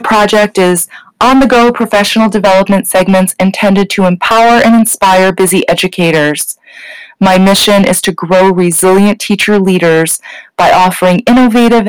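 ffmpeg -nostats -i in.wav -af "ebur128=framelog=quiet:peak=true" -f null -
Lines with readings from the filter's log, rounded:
Integrated loudness:
  I:          -7.7 LUFS
  Threshold: -17.9 LUFS
Loudness range:
  LRA:         1.2 LU
  Threshold: -28.0 LUFS
  LRA low:    -8.6 LUFS
  LRA high:   -7.3 LUFS
True peak:
  Peak:       -2.1 dBFS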